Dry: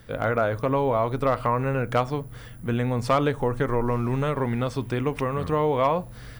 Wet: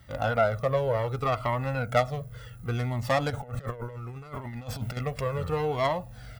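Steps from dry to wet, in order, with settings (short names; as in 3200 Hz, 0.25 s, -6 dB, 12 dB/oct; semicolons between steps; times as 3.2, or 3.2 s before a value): tracing distortion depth 0.23 ms; HPF 55 Hz; comb 1.5 ms, depth 51%; 3.3–4.97 negative-ratio compressor -30 dBFS, ratio -0.5; cascading flanger falling 0.68 Hz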